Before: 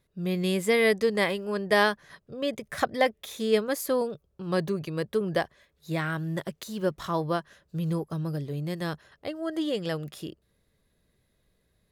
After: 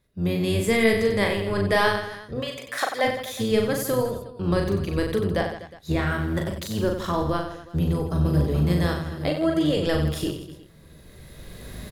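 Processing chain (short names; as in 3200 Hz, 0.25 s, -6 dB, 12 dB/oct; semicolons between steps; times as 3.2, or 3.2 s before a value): octaver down 1 oct, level -2 dB; recorder AGC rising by 16 dB/s; 2.4–3.03 HPF 940 Hz -> 450 Hz 12 dB/oct; 5.37–6.07 high shelf 8800 Hz -8 dB; reverse bouncing-ball echo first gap 40 ms, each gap 1.3×, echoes 5; 7.82–8.43 echo throw 0.43 s, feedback 55%, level -6 dB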